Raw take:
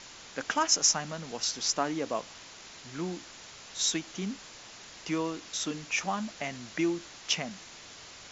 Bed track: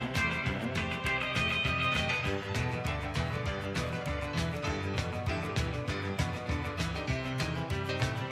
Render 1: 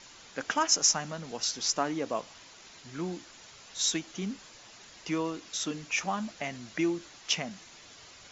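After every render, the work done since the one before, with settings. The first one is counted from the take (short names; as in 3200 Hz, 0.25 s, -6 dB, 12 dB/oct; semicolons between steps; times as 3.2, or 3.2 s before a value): denoiser 6 dB, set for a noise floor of -49 dBFS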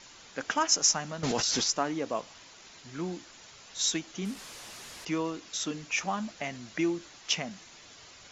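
1.23–1.64 fast leveller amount 100%; 4.25–5.05 delta modulation 64 kbps, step -39.5 dBFS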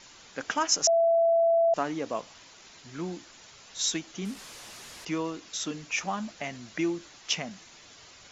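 0.87–1.74 bleep 668 Hz -19 dBFS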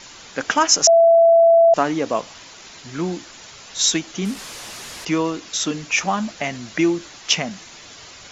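gain +10.5 dB; limiter -1 dBFS, peak gain reduction 1.5 dB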